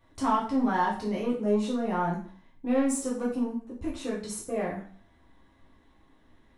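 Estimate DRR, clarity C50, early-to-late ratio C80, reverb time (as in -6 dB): -5.5 dB, 6.5 dB, 10.5 dB, 0.45 s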